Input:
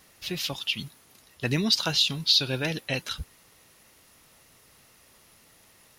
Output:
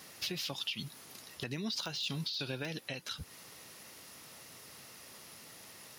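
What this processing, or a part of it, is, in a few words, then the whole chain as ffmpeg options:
broadcast voice chain: -af "highpass=110,deesser=0.65,acompressor=threshold=0.0126:ratio=5,equalizer=f=5000:t=o:w=0.5:g=3.5,alimiter=level_in=2:limit=0.0631:level=0:latency=1:release=306,volume=0.501,volume=1.68"

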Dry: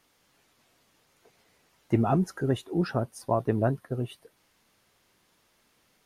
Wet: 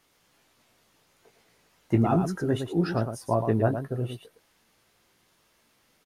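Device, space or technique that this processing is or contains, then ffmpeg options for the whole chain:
slapback doubling: -filter_complex "[0:a]asplit=3[s0][s1][s2];[s1]adelay=18,volume=0.447[s3];[s2]adelay=113,volume=0.422[s4];[s0][s3][s4]amix=inputs=3:normalize=0"

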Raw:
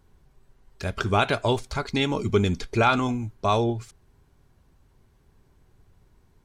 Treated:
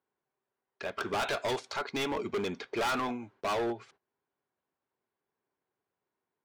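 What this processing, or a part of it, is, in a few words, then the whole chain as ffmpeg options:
walkie-talkie: -filter_complex "[0:a]asettb=1/sr,asplit=3[s0][s1][s2];[s0]atrim=end=1.234[s3];[s1]atrim=start=1.23:end=1.78,asetpts=PTS-STARTPTS,afade=t=in:d=0.004:c=qsin,afade=t=out:st=0.546:d=0.004:c=qsin,bass=f=250:g=-2,treble=f=4000:g=13[s4];[s2]atrim=start=1.776[s5];[s3][s4]acrossfade=d=0.004:c1=hsin:c2=qsin[s6];[s6][s5]acrossfade=d=0.004:c1=qsin:c2=hsin,highpass=400,lowpass=2800,asoftclip=type=hard:threshold=0.0398,agate=range=0.141:threshold=0.00112:ratio=16:detection=peak"

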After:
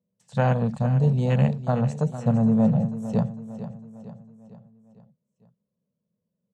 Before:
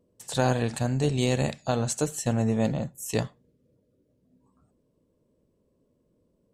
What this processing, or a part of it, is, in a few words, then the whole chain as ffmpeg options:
over-cleaned archive recording: -af "highpass=140,lowpass=6800,afwtdn=0.02,firequalizer=gain_entry='entry(100,0);entry(200,7);entry(290,-20);entry(490,-6)':delay=0.05:min_phase=1,aecho=1:1:453|906|1359|1812|2265:0.237|0.119|0.0593|0.0296|0.0148,volume=2.37"

